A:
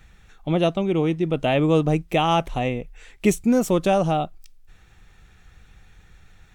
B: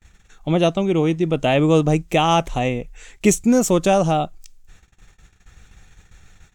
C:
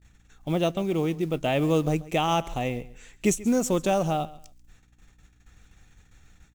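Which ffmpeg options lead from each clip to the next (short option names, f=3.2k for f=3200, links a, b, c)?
-af "agate=range=-30dB:threshold=-49dB:ratio=16:detection=peak,equalizer=f=6.9k:t=o:w=0.62:g=9,volume=3dB"
-af "aeval=exprs='val(0)+0.00224*(sin(2*PI*60*n/s)+sin(2*PI*2*60*n/s)/2+sin(2*PI*3*60*n/s)/3+sin(2*PI*4*60*n/s)/4+sin(2*PI*5*60*n/s)/5)':c=same,acrusher=bits=7:mode=log:mix=0:aa=0.000001,aecho=1:1:136|272:0.112|0.0258,volume=-7.5dB"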